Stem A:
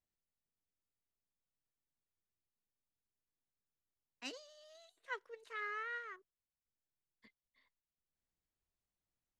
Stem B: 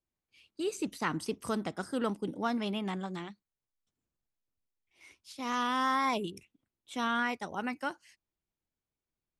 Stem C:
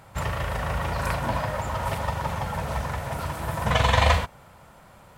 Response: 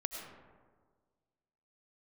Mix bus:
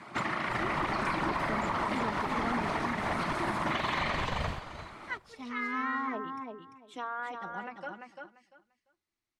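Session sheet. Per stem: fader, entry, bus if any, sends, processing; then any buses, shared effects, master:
+1.5 dB, 0.00 s, bus A, no send, no echo send, treble shelf 4 kHz +6.5 dB
-2.5 dB, 0.00 s, no bus, no send, echo send -5 dB, low-pass that closes with the level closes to 1.4 kHz, closed at -27.5 dBFS; endless flanger 3.8 ms +0.29 Hz
+2.5 dB, 0.00 s, bus A, no send, echo send -15 dB, whisper effect
bus A: 0.0 dB, cabinet simulation 210–9800 Hz, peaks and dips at 340 Hz +9 dB, 490 Hz -9 dB, 1.2 kHz +5 dB, 2.1 kHz +8 dB, 4.2 kHz +4 dB, 7.4 kHz -4 dB; compression 2.5:1, threshold -29 dBFS, peak gain reduction 12 dB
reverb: none
echo: feedback delay 344 ms, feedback 19%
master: treble shelf 9 kHz -11 dB; peak limiter -21.5 dBFS, peak gain reduction 9.5 dB

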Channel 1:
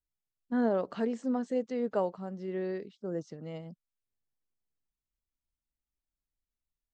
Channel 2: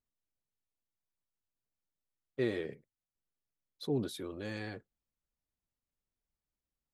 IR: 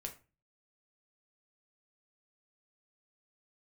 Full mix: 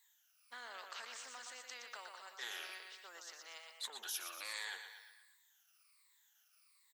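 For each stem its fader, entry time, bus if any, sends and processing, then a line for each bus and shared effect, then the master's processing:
-3.0 dB, 0.00 s, no send, echo send -8.5 dB, peak limiter -25.5 dBFS, peak gain reduction 8.5 dB
+1.5 dB, 0.00 s, no send, echo send -15 dB, drifting ripple filter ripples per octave 1, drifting -1.3 Hz, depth 23 dB; transient shaper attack -7 dB, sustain +2 dB; compression 2:1, threshold -34 dBFS, peak gain reduction 6 dB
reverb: none
echo: feedback delay 119 ms, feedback 39%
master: high-pass 1.2 kHz 24 dB/octave; spectrum-flattening compressor 2:1

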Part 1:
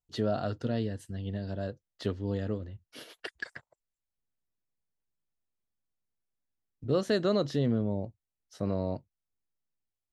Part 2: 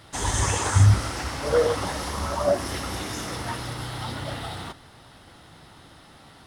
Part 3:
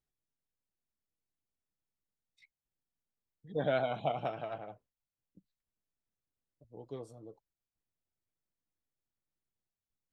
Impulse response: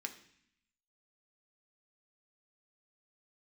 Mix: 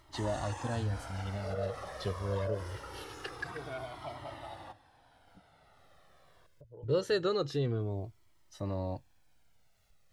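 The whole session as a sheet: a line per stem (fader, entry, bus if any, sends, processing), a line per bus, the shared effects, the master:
+2.5 dB, 0.00 s, no send, none
-5.5 dB, 0.00 s, no send, tone controls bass -9 dB, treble 0 dB; peak limiter -20 dBFS, peak gain reduction 9 dB; treble shelf 2.3 kHz -11.5 dB
-4.5 dB, 0.00 s, no send, upward compressor, threshold -33 dBFS; treble shelf 6.7 kHz -10.5 dB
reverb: none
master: peaking EQ 220 Hz -7.5 dB 0.51 oct; Shepard-style flanger falling 0.24 Hz

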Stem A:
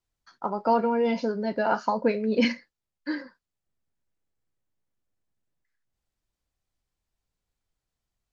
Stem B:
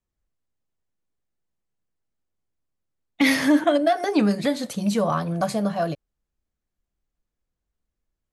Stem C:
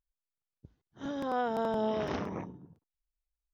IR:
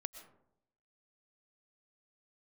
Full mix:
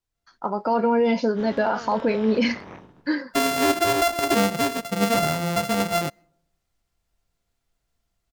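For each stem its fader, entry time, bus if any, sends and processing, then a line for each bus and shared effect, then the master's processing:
-1.5 dB, 0.00 s, no send, level rider gain up to 8 dB
+0.5 dB, 0.15 s, send -21 dB, sorted samples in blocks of 64 samples
-2.0 dB, 0.35 s, no send, spectral contrast reduction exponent 0.46; Bessel low-pass 2.3 kHz, order 2; peak limiter -25 dBFS, peak gain reduction 5 dB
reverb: on, RT60 0.80 s, pre-delay 80 ms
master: peak limiter -12.5 dBFS, peak gain reduction 7.5 dB

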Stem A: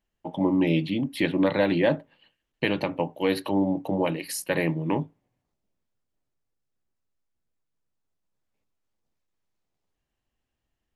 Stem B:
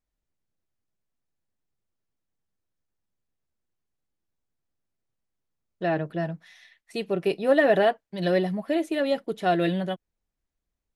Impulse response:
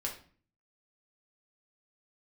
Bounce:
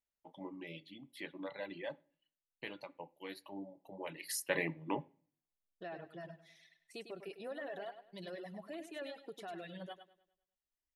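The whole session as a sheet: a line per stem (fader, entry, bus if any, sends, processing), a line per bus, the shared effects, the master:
3.96 s -21.5 dB -> 4.31 s -10 dB, 0.00 s, send -4.5 dB, no echo send, small resonant body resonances 2/3.4 kHz, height 8 dB
-9.0 dB, 0.00 s, no send, echo send -5 dB, compression, threshold -25 dBFS, peak gain reduction 10.5 dB; peak limiter -24.5 dBFS, peak gain reduction 8.5 dB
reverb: on, RT60 0.45 s, pre-delay 5 ms
echo: feedback delay 101 ms, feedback 44%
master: reverb removal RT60 1.8 s; bass shelf 280 Hz -11.5 dB

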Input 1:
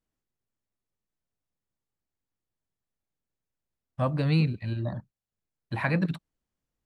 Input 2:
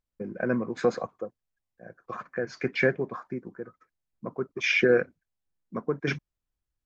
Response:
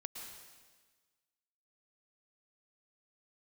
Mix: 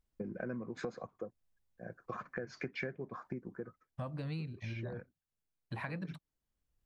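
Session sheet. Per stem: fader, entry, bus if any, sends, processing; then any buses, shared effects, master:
-5.0 dB, 0.00 s, no send, none
-2.0 dB, 0.00 s, no send, bass shelf 170 Hz +9 dB; auto duck -19 dB, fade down 0.30 s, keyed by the first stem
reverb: none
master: compression 6:1, threshold -38 dBFS, peak gain reduction 18.5 dB

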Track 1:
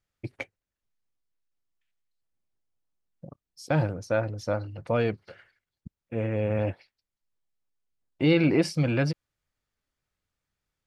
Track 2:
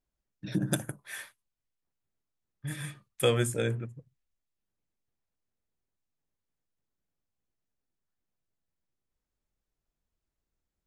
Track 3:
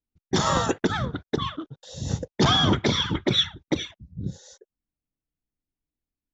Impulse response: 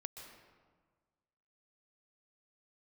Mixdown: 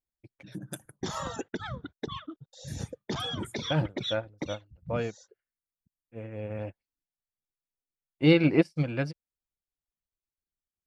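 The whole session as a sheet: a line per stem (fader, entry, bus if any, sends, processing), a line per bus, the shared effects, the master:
+2.5 dB, 0.00 s, no bus, no send, upward expansion 2.5:1, over -44 dBFS
-10.0 dB, 0.00 s, bus A, no send, none
-6.0 dB, 0.70 s, bus A, no send, none
bus A: 0.0 dB, reverb removal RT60 1.4 s; compression 6:1, threshold -31 dBFS, peak gain reduction 9.5 dB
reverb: none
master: treble shelf 8.1 kHz +3.5 dB

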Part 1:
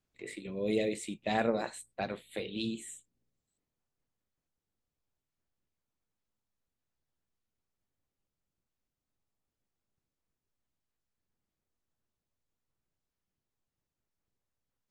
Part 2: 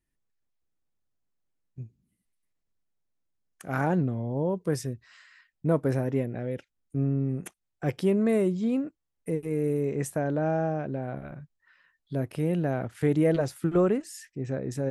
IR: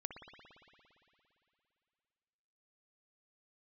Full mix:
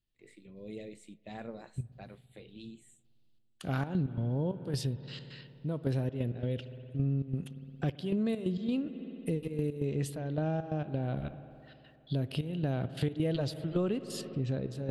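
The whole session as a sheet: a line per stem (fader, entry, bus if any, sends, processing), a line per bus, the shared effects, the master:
-16.5 dB, 0.00 s, send -18 dB, none
-2.5 dB, 0.00 s, send -7 dB, high-order bell 3.6 kHz +15 dB 1 oct; trance gate "..xx.x.xxx" 133 bpm -12 dB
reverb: on, RT60 2.8 s, pre-delay 57 ms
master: bass shelf 200 Hz +11 dB; compression 3:1, threshold -31 dBFS, peak gain reduction 11.5 dB

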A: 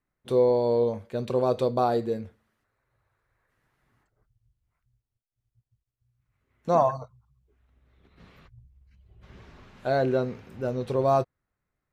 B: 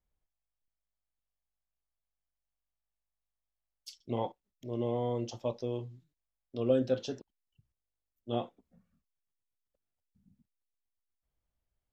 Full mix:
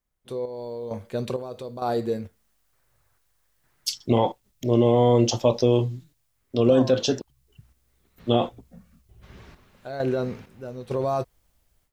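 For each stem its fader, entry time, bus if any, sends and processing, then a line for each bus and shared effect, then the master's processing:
-7.5 dB, 0.00 s, no send, peak limiter -19 dBFS, peak gain reduction 9 dB; square tremolo 1.1 Hz, depth 65%, duty 50%
+0.5 dB, 0.00 s, no send, level rider gain up to 7.5 dB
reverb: none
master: treble shelf 4.3 kHz +5.5 dB; level rider gain up to 10 dB; peak limiter -9.5 dBFS, peak gain reduction 7.5 dB

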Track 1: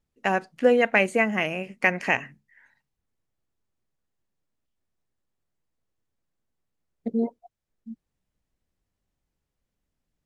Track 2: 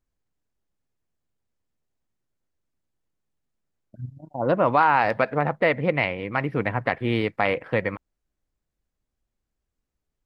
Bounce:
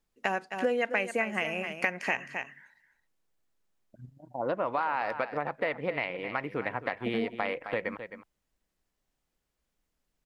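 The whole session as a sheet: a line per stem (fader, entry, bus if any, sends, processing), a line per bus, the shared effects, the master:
+2.5 dB, 0.00 s, no send, echo send -12.5 dB, bass shelf 370 Hz -6.5 dB
-3.0 dB, 0.00 s, no send, echo send -14 dB, peaking EQ 140 Hz -9 dB 1.8 oct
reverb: none
echo: delay 263 ms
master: peaking EQ 92 Hz -14 dB 0.28 oct; compression 3:1, threshold -28 dBFS, peak gain reduction 11.5 dB

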